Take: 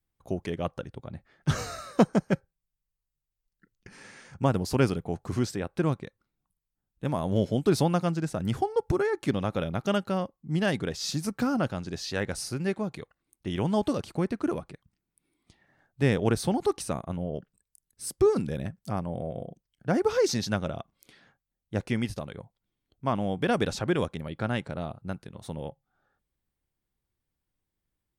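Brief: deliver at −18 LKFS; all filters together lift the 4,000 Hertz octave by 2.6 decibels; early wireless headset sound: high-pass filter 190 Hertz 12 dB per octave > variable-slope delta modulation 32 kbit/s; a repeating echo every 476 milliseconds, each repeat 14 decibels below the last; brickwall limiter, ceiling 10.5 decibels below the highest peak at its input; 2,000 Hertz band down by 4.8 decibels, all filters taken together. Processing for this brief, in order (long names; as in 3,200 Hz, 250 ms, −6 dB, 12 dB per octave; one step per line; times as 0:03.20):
parametric band 2,000 Hz −8 dB
parametric band 4,000 Hz +5.5 dB
brickwall limiter −16.5 dBFS
high-pass filter 190 Hz 12 dB per octave
repeating echo 476 ms, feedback 20%, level −14 dB
variable-slope delta modulation 32 kbit/s
level +14.5 dB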